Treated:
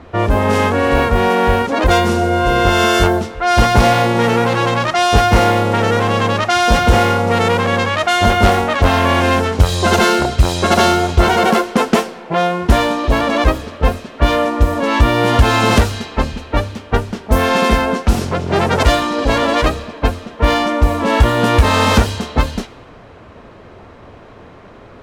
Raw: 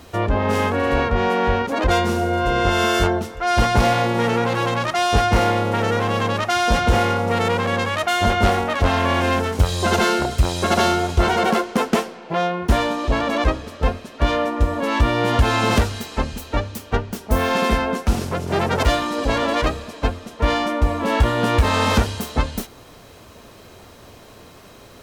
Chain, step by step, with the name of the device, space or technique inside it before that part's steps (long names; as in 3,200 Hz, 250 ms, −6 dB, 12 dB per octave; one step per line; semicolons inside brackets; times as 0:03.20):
cassette deck with a dynamic noise filter (white noise bed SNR 26 dB; low-pass that shuts in the quiet parts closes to 1,500 Hz, open at −14 dBFS)
level +5.5 dB